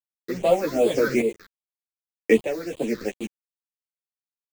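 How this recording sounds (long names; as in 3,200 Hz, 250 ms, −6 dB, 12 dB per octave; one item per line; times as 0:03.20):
a quantiser's noise floor 6 bits, dither none
phaser sweep stages 6, 2.6 Hz, lowest notch 740–1,600 Hz
tremolo saw up 0.83 Hz, depth 70%
a shimmering, thickened sound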